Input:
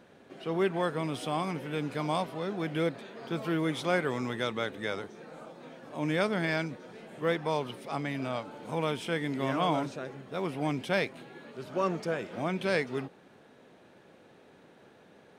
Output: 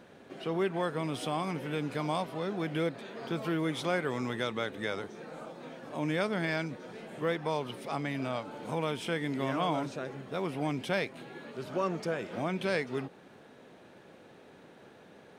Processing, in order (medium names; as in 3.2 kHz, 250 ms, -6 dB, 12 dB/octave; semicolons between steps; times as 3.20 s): compression 1.5:1, threshold -37 dBFS, peak gain reduction 5.5 dB; trim +2.5 dB